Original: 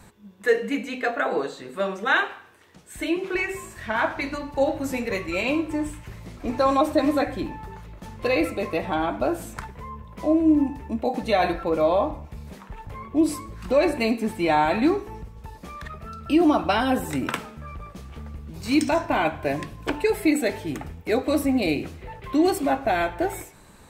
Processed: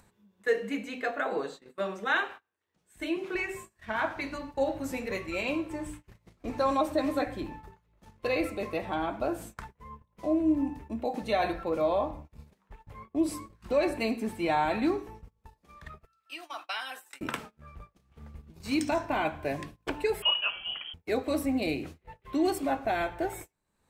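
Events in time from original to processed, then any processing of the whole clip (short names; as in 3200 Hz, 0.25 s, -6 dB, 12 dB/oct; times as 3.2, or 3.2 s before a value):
16.05–17.21 HPF 1500 Hz
20.22–20.94 inverted band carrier 3200 Hz
whole clip: notches 60/120/180/240/300 Hz; gate -36 dBFS, range -26 dB; upward compressor, threshold -40 dBFS; gain -6.5 dB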